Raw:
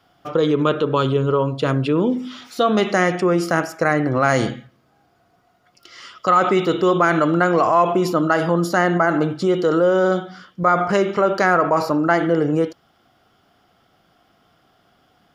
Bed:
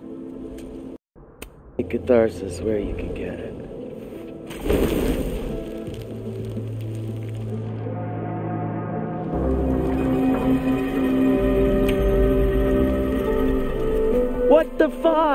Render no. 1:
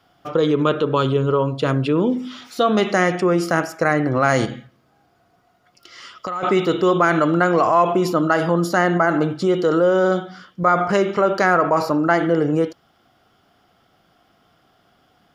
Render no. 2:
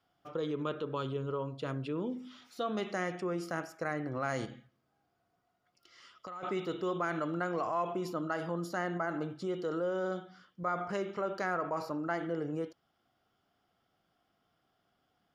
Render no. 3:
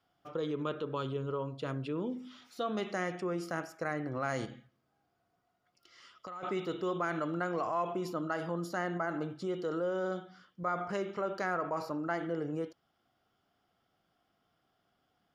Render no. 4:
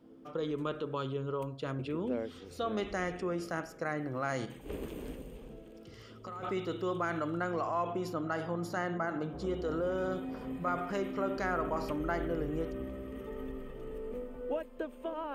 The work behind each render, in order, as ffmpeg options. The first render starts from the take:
-filter_complex "[0:a]asettb=1/sr,asplit=3[a][b][c];[a]atrim=end=4.454[d];[b]atrim=start=4.45:end=6.43,asetpts=PTS-STARTPTS,afade=t=in:d=0.004:c=qsin,afade=t=out:st=1.976:d=0.004:c=qsin,acompressor=threshold=-23dB:ratio=6:attack=3.2:release=140:knee=1:detection=peak[e];[c]atrim=start=6.426[f];[d][e]acrossfade=d=0.004:c1=hsin:c2=qsin[g];[g][f]acrossfade=d=0.004:c1=qsin:c2=hsin"
-af "volume=-17.5dB"
-af anull
-filter_complex "[1:a]volume=-20.5dB[a];[0:a][a]amix=inputs=2:normalize=0"

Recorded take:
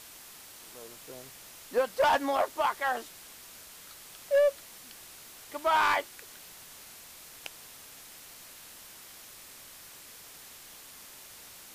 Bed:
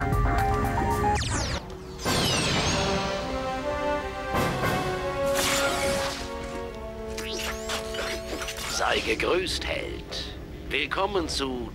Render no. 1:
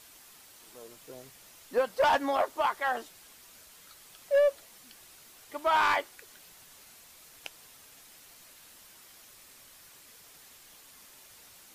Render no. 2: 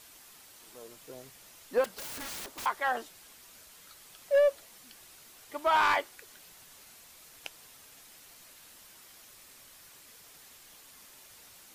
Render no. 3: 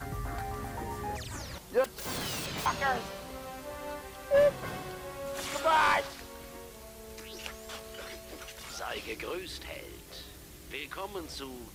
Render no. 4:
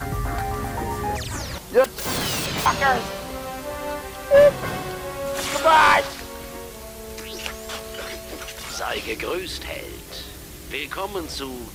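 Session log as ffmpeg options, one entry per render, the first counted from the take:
-af "afftdn=nr=6:nf=-50"
-filter_complex "[0:a]asettb=1/sr,asplit=3[a][b][c];[a]atrim=end=1.844[d];[b]atrim=start=1.84:end=2.66,asetpts=PTS-STARTPTS,afade=t=in:d=0.004:c=qsin,afade=t=out:st=0.816:d=0.004:c=qsin,aeval=exprs='(mod(59.6*val(0)+1,2)-1)/59.6':c=same[e];[c]atrim=start=2.656[f];[d][e]acrossfade=d=0.004:c1=hsin:c2=qsin[g];[g][f]acrossfade=d=0.004:c1=qsin:c2=hsin"
-filter_complex "[1:a]volume=-13dB[a];[0:a][a]amix=inputs=2:normalize=0"
-af "volume=10.5dB"

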